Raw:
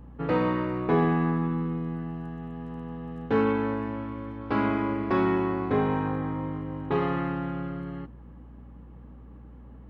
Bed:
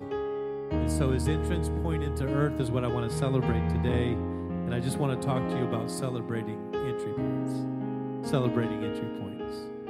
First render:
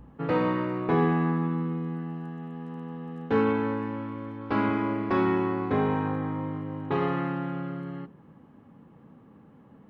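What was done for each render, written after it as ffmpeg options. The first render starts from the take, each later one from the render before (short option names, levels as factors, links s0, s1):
-af "bandreject=f=60:t=h:w=4,bandreject=f=120:t=h:w=4,bandreject=f=180:t=h:w=4,bandreject=f=240:t=h:w=4,bandreject=f=300:t=h:w=4,bandreject=f=360:t=h:w=4,bandreject=f=420:t=h:w=4,bandreject=f=480:t=h:w=4,bandreject=f=540:t=h:w=4,bandreject=f=600:t=h:w=4,bandreject=f=660:t=h:w=4"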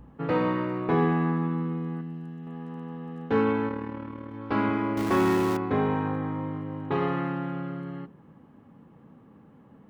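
-filter_complex "[0:a]asettb=1/sr,asplit=3[s0][s1][s2];[s0]atrim=end=2.014[s3];[s1]atrim=start=2.01:end=2.47,asetpts=PTS-STARTPTS,afade=t=in:d=0.004:c=qsin,afade=t=out:st=0.456:d=0.004:c=qsin,equalizer=f=950:w=0.57:g=-10[s4];[s2]atrim=start=2.466[s5];[s3][s4]acrossfade=d=0.004:c1=hsin:c2=qsin[s6];[s6][s5]acrossfade=d=0.004:c1=qsin:c2=hsin,asplit=3[s7][s8][s9];[s7]afade=t=out:st=3.67:d=0.02[s10];[s8]tremolo=f=38:d=0.667,afade=t=in:st=3.67:d=0.02,afade=t=out:st=4.32:d=0.02[s11];[s9]afade=t=in:st=4.32:d=0.02[s12];[s10][s11][s12]amix=inputs=3:normalize=0,asettb=1/sr,asplit=3[s13][s14][s15];[s13]atrim=end=4.974[s16];[s14]atrim=start=4.97:end=5.57,asetpts=PTS-STARTPTS,afade=t=in:d=0.004:c=qsin,afade=t=out:st=0.596:d=0.004:c=qsin,aeval=exprs='val(0)+0.5*0.0335*sgn(val(0))':c=same[s17];[s15]atrim=start=5.566[s18];[s16][s17]acrossfade=d=0.004:c1=hsin:c2=qsin[s19];[s19][s18]acrossfade=d=0.004:c1=qsin:c2=hsin"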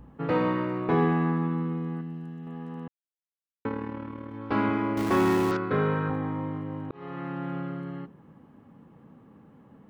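-filter_complex "[0:a]asettb=1/sr,asplit=3[s0][s1][s2];[s0]atrim=end=5.514[s3];[s1]atrim=start=5.51:end=6.1,asetpts=PTS-STARTPTS,afade=t=in:d=0.004:c=qsin,afade=t=out:st=0.586:d=0.004:c=qsin,highpass=120,equalizer=f=140:t=q:w=4:g=10,equalizer=f=250:t=q:w=4:g=-7,equalizer=f=510:t=q:w=4:g=4,equalizer=f=810:t=q:w=4:g=-10,equalizer=f=1400:t=q:w=4:g=9,equalizer=f=4400:t=q:w=4:g=3,lowpass=f=5800:w=0.5412,lowpass=f=5800:w=1.3066[s4];[s2]atrim=start=6.096[s5];[s3][s4]acrossfade=d=0.004:c1=hsin:c2=qsin[s6];[s6][s5]acrossfade=d=0.004:c1=qsin:c2=hsin,asplit=4[s7][s8][s9][s10];[s7]atrim=end=2.88,asetpts=PTS-STARTPTS,afade=t=out:st=2.876:d=0.004:c=hsin[s11];[s8]atrim=start=2.88:end=3.65,asetpts=PTS-STARTPTS,volume=0[s12];[s9]atrim=start=3.65:end=6.91,asetpts=PTS-STARTPTS,afade=t=in:d=0.004:c=hsin,afade=t=out:st=3.256:d=0.004:c=hsin[s13];[s10]atrim=start=6.91,asetpts=PTS-STARTPTS,afade=t=in:d=0.64[s14];[s11][s12][s13][s14]concat=n=4:v=0:a=1"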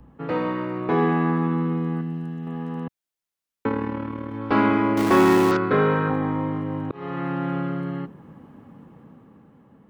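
-filter_complex "[0:a]acrossover=split=170|2000[s0][s1][s2];[s0]alimiter=level_in=4.47:limit=0.0631:level=0:latency=1,volume=0.224[s3];[s3][s1][s2]amix=inputs=3:normalize=0,dynaudnorm=f=170:g=13:m=2.37"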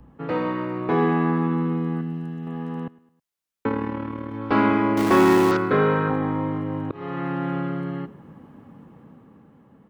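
-af "aecho=1:1:106|212|318:0.0794|0.0373|0.0175"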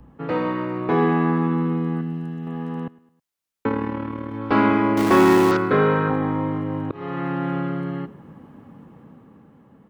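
-af "volume=1.19"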